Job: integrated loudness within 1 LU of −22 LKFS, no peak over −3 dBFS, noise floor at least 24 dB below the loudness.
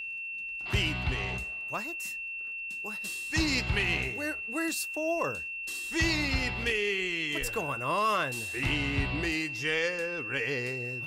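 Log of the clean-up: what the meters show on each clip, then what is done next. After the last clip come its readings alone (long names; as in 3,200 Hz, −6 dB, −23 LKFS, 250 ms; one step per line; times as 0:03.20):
crackle rate 20 per second; interfering tone 2,700 Hz; level of the tone −35 dBFS; integrated loudness −30.0 LKFS; sample peak −18.0 dBFS; target loudness −22.0 LKFS
→ click removal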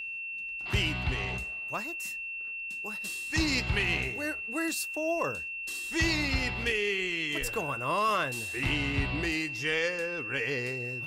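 crackle rate 0.090 per second; interfering tone 2,700 Hz; level of the tone −35 dBFS
→ notch filter 2,700 Hz, Q 30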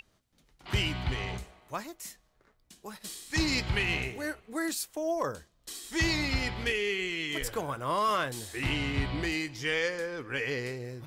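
interfering tone none found; integrated loudness −31.5 LKFS; sample peak −17.5 dBFS; target loudness −22.0 LKFS
→ level +9.5 dB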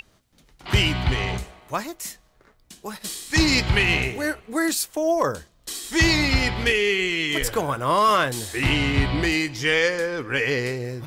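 integrated loudness −22.0 LKFS; sample peak −8.0 dBFS; background noise floor −60 dBFS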